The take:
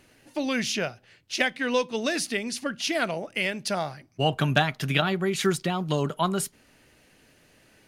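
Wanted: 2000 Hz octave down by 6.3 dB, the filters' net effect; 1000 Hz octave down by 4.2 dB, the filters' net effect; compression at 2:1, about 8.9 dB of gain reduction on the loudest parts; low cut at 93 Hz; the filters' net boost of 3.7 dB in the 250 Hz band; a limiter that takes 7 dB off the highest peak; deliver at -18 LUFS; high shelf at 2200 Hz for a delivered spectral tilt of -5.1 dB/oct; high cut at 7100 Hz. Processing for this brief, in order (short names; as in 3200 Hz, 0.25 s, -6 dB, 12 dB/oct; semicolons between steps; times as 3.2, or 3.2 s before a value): HPF 93 Hz; LPF 7100 Hz; bell 250 Hz +5.5 dB; bell 1000 Hz -4.5 dB; bell 2000 Hz -4 dB; high shelf 2200 Hz -5 dB; compressor 2:1, threshold -35 dBFS; gain +18 dB; limiter -7.5 dBFS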